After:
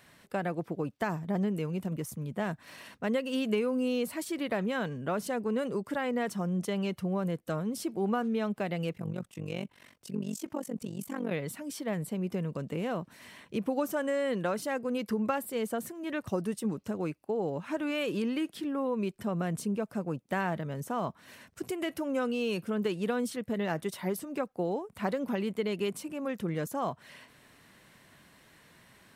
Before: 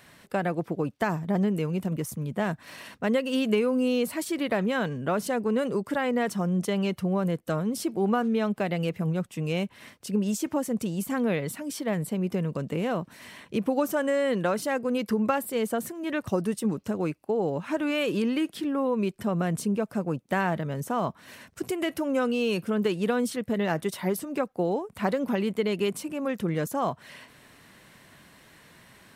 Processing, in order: 8.93–11.32 AM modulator 47 Hz, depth 80%; gain -5 dB

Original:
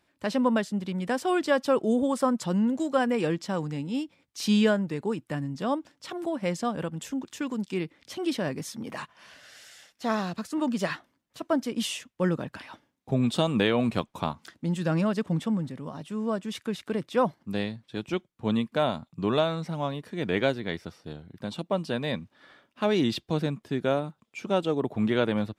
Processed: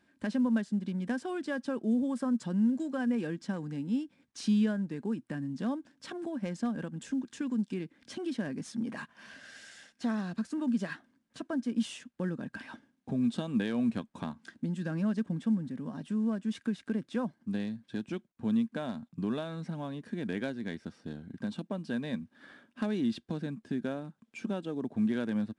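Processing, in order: compressor 2:1, threshold -42 dBFS, peak gain reduction 13 dB; small resonant body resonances 230/1600 Hz, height 13 dB, ringing for 35 ms; gain -3 dB; IMA ADPCM 88 kbps 22050 Hz

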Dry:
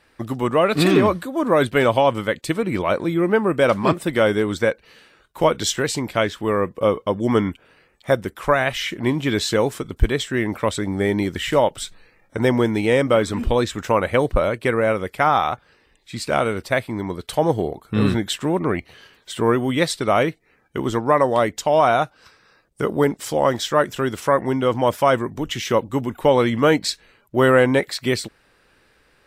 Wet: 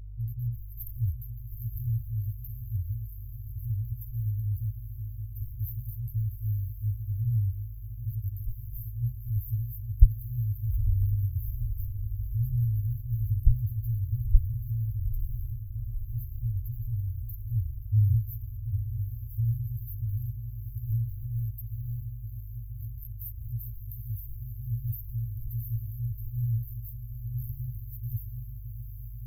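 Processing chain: diffused feedback echo 0.872 s, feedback 63%, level -9 dB; sample leveller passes 1; hum 50 Hz, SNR 24 dB; FFT band-reject 120–12000 Hz

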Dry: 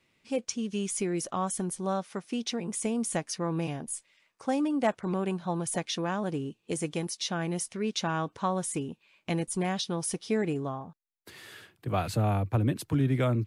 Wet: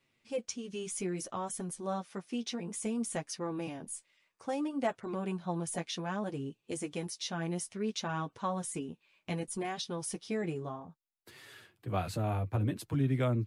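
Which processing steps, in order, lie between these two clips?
flange 0.61 Hz, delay 7 ms, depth 5.8 ms, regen -20%; gain -2 dB

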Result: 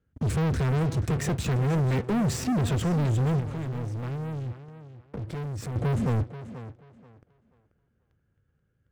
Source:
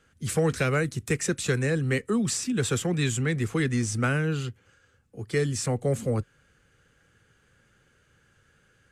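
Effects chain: HPF 63 Hz 12 dB/oct; tilt -4.5 dB/oct; sample leveller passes 5; limiter -14.5 dBFS, peak gain reduction 9 dB; 3.4–5.76 compressor 6:1, threshold -25 dBFS, peak gain reduction 8.5 dB; tape echo 0.483 s, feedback 26%, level -10.5 dB, low-pass 5100 Hz; gain -8 dB

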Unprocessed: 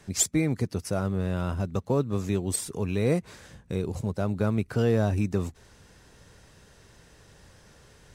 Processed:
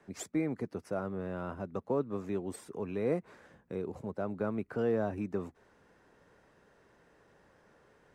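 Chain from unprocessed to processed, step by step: three-band isolator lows -15 dB, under 200 Hz, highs -16 dB, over 2100 Hz; gain -4.5 dB

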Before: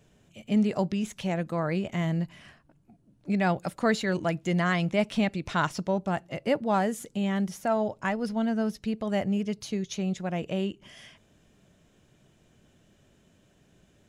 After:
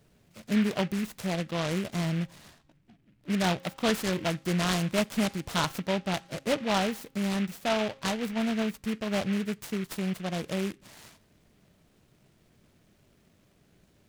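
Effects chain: de-hum 268.9 Hz, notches 9; noise-modulated delay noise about 2000 Hz, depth 0.12 ms; gain -1.5 dB

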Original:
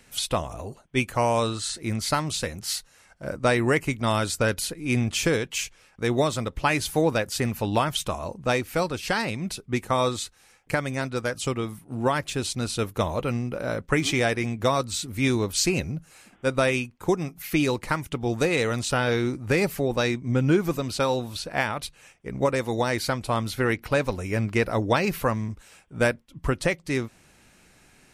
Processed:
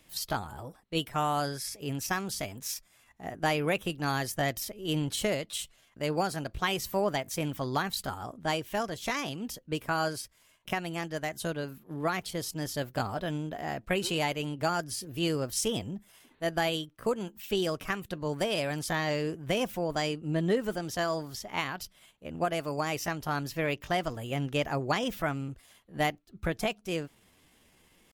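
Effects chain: pitch shift +4 st; gain -6.5 dB

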